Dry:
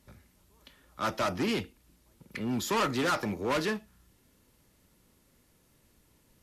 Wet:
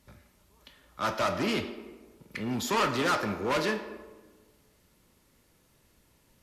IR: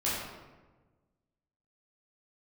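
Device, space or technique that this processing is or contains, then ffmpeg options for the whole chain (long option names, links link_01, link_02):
filtered reverb send: -filter_complex "[0:a]asplit=2[link_01][link_02];[link_02]highpass=frequency=270:width=0.5412,highpass=frequency=270:width=1.3066,lowpass=7600[link_03];[1:a]atrim=start_sample=2205[link_04];[link_03][link_04]afir=irnorm=-1:irlink=0,volume=-13dB[link_05];[link_01][link_05]amix=inputs=2:normalize=0"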